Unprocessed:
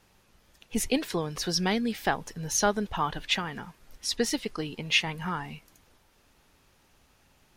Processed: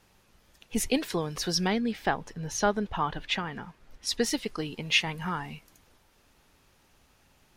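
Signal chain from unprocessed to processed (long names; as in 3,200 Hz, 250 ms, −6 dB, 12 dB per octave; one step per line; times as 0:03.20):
0:01.67–0:04.07: low-pass filter 3,100 Hz 6 dB per octave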